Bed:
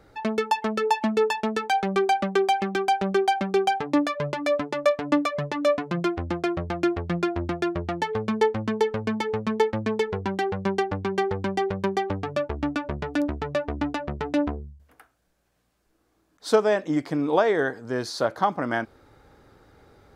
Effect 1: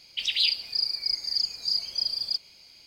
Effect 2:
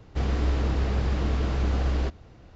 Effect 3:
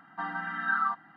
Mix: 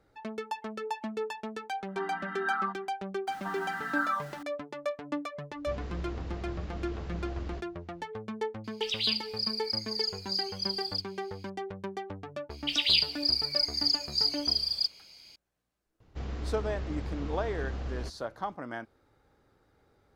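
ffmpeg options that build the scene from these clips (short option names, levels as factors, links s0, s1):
-filter_complex "[3:a]asplit=2[s0][s1];[2:a]asplit=2[s2][s3];[1:a]asplit=2[s4][s5];[0:a]volume=0.237[s6];[s1]aeval=exprs='val(0)+0.5*0.00794*sgn(val(0))':c=same[s7];[s0]atrim=end=1.16,asetpts=PTS-STARTPTS,volume=0.631,afade=t=in:d=0.1,afade=t=out:st=1.06:d=0.1,adelay=1780[s8];[s7]atrim=end=1.16,asetpts=PTS-STARTPTS,volume=0.668,afade=t=in:d=0.004:c=hsin,afade=t=out:st=1.156:d=0.004:c=hsin,adelay=3270[s9];[s2]atrim=end=2.55,asetpts=PTS-STARTPTS,volume=0.224,afade=t=in:d=0.004:c=hsin,afade=t=out:st=2.546:d=0.004:c=hsin,adelay=5510[s10];[s4]atrim=end=2.86,asetpts=PTS-STARTPTS,volume=0.531,afade=t=in:d=0.004:c=hsin,afade=t=out:st=2.856:d=0.004:c=hsin,adelay=8640[s11];[s5]atrim=end=2.86,asetpts=PTS-STARTPTS,volume=0.944,afade=t=in:d=0.004:c=hsin,afade=t=out:st=2.856:d=0.004:c=hsin,adelay=12500[s12];[s3]atrim=end=2.55,asetpts=PTS-STARTPTS,volume=0.282,afade=t=in:d=0.004:c=hsin,afade=t=out:st=2.546:d=0.004:c=hsin,adelay=16000[s13];[s6][s8][s9][s10][s11][s12][s13]amix=inputs=7:normalize=0"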